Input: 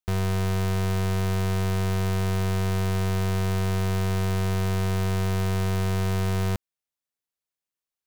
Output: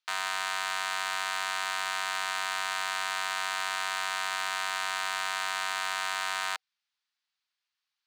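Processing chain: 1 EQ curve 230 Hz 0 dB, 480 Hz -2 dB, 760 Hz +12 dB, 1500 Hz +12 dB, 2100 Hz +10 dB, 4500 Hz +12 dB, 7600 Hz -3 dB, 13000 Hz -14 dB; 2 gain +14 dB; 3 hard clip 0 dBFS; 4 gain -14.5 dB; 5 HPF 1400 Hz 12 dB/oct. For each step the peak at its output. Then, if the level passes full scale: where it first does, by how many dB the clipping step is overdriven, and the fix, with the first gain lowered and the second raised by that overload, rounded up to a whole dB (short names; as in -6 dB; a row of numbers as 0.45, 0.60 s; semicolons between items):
-9.5, +4.5, 0.0, -14.5, -15.5 dBFS; step 2, 4.5 dB; step 2 +9 dB, step 4 -9.5 dB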